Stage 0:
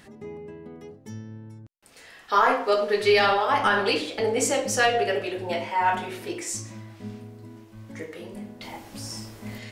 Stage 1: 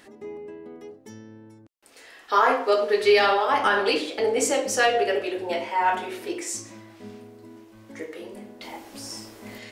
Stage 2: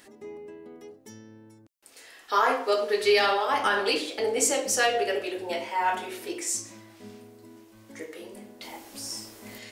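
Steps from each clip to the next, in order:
low shelf with overshoot 220 Hz −9 dB, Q 1.5
high-shelf EQ 4,600 Hz +9 dB; level −4 dB

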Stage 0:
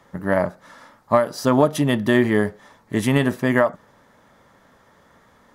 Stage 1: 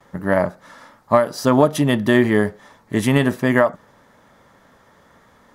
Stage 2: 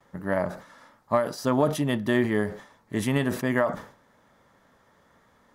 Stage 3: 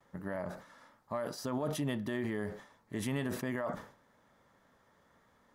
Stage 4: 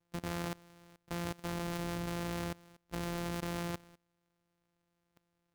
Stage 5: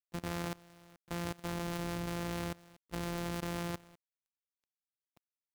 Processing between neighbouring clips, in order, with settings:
noise gate with hold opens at −49 dBFS; level +2 dB
level that may fall only so fast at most 120 dB per second; level −8.5 dB
brickwall limiter −19.5 dBFS, peak gain reduction 9.5 dB; level −6.5 dB
samples sorted by size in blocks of 256 samples; output level in coarse steps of 22 dB; level +6.5 dB
log-companded quantiser 6 bits

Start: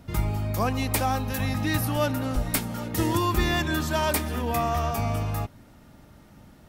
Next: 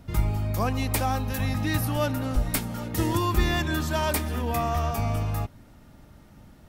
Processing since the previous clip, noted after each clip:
low-shelf EQ 76 Hz +6.5 dB
level −1.5 dB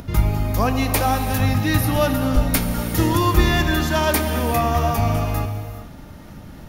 notch filter 8,000 Hz, Q 6.1
upward compression, threshold −38 dBFS
reverb whose tail is shaped and stops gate 450 ms flat, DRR 6.5 dB
level +6.5 dB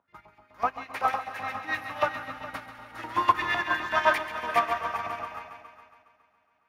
auto-filter band-pass saw up 7.9 Hz 910–2,400 Hz
on a send: echo machine with several playback heads 138 ms, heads first and third, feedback 69%, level −7.5 dB
on the sum: expander for the loud parts 2.5 to 1, over −43 dBFS
level +6.5 dB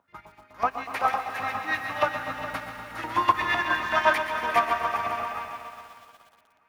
in parallel at −2 dB: downward compressor, threshold −34 dBFS, peak gain reduction 18 dB
on the sum: feedback echo at a low word length 120 ms, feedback 80%, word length 8 bits, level −13 dB

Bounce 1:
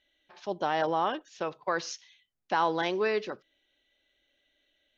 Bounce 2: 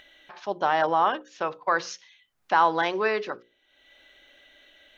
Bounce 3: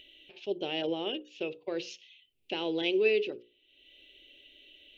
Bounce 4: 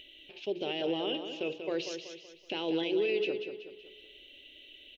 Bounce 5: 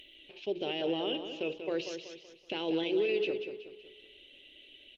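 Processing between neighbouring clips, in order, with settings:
upward compression, threshold −46 dBFS; parametric band 1,200 Hz +8 dB 2 octaves; mains-hum notches 60/120/180/240/300/360/420/480/540 Hz
drawn EQ curve 110 Hz 0 dB, 180 Hz −5 dB, 400 Hz +5 dB, 1,100 Hz −29 dB, 1,700 Hz −21 dB, 2,700 Hz +8 dB, 4,200 Hz −4 dB, 6,200 Hz −10 dB, 9,200 Hz −4 dB; level −1.5 dB
brickwall limiter −26 dBFS, peak gain reduction 11 dB; repeating echo 188 ms, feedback 43%, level −8 dB; level +2.5 dB
Opus 24 kbit/s 48,000 Hz

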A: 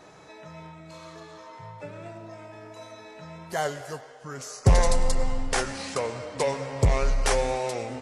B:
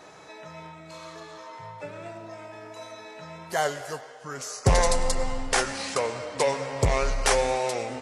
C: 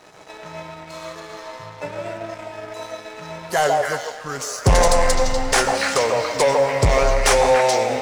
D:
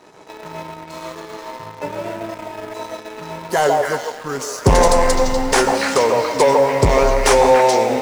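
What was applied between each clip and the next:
low-shelf EQ 290 Hz −7.5 dB; level +3.5 dB
echo through a band-pass that steps 142 ms, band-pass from 670 Hz, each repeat 1.4 octaves, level 0 dB; leveller curve on the samples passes 2
in parallel at −9.5 dB: bit reduction 5 bits; on the sum: hollow resonant body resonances 250/380/920 Hz, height 7 dB, ringing for 20 ms; level −2.5 dB

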